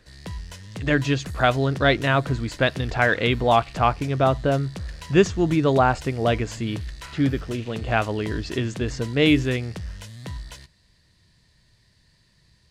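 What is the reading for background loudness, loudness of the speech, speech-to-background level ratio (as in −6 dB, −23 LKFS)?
−37.0 LKFS, −22.5 LKFS, 14.5 dB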